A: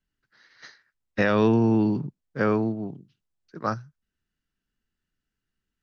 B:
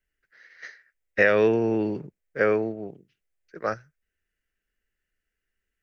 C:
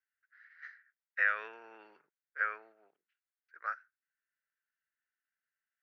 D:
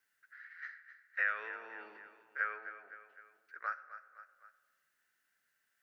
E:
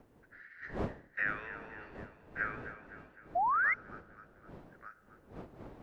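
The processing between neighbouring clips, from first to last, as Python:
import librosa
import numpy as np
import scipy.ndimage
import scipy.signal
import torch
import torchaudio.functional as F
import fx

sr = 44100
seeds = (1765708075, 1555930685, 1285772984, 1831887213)

y1 = fx.graphic_eq(x, sr, hz=(125, 250, 500, 1000, 2000, 4000), db=(-11, -9, 7, -11, 10, -9))
y1 = F.gain(torch.from_numpy(y1), 2.0).numpy()
y2 = fx.ladder_bandpass(y1, sr, hz=1600.0, resonance_pct=60)
y3 = fx.echo_feedback(y2, sr, ms=255, feedback_pct=38, wet_db=-15.0)
y3 = fx.room_shoebox(y3, sr, seeds[0], volume_m3=1100.0, walls='mixed', distance_m=0.33)
y3 = fx.band_squash(y3, sr, depth_pct=40)
y4 = fx.dmg_wind(y3, sr, seeds[1], corner_hz=470.0, level_db=-48.0)
y4 = y4 + 10.0 ** (-12.0 / 20.0) * np.pad(y4, (int(1186 * sr / 1000.0), 0))[:len(y4)]
y4 = fx.spec_paint(y4, sr, seeds[2], shape='rise', start_s=3.35, length_s=0.39, low_hz=660.0, high_hz=2200.0, level_db=-28.0)
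y4 = F.gain(torch.from_numpy(y4), -1.0).numpy()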